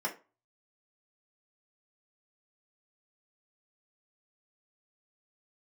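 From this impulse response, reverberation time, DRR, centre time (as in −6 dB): 0.30 s, −2.5 dB, 13 ms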